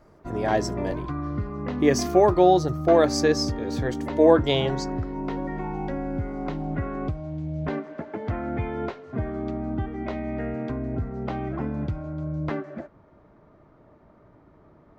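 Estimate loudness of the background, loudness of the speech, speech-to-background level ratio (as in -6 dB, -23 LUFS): -31.0 LUFS, -22.0 LUFS, 9.0 dB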